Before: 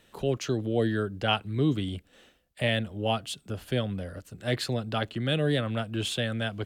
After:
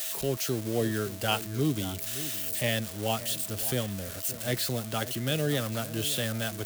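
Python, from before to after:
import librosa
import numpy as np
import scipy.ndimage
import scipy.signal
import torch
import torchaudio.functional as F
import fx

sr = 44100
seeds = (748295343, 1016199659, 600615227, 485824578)

y = x + 0.5 * 10.0 ** (-22.5 / 20.0) * np.diff(np.sign(x), prepend=np.sign(x[:1]))
y = y + 10.0 ** (-49.0 / 20.0) * np.sin(2.0 * np.pi * 650.0 * np.arange(len(y)) / sr)
y = fx.echo_alternate(y, sr, ms=569, hz=1800.0, feedback_pct=53, wet_db=-14)
y = y * librosa.db_to_amplitude(-2.5)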